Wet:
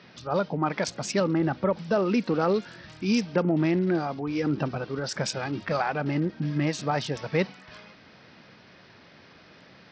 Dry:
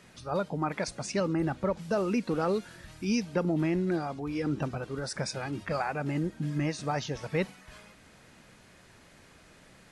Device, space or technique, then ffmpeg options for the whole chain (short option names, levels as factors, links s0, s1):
Bluetooth headset: -af "highpass=110,aresample=16000,aresample=44100,volume=1.68" -ar 44100 -c:a sbc -b:a 64k